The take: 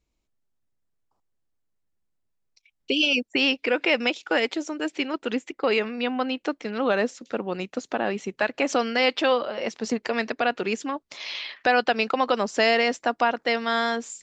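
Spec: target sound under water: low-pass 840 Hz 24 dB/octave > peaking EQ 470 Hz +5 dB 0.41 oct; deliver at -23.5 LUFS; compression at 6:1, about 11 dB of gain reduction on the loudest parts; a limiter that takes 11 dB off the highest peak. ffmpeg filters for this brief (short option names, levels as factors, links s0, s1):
-af "acompressor=threshold=0.0398:ratio=6,alimiter=level_in=1.19:limit=0.0631:level=0:latency=1,volume=0.841,lowpass=f=840:w=0.5412,lowpass=f=840:w=1.3066,equalizer=f=470:t=o:w=0.41:g=5,volume=4.73"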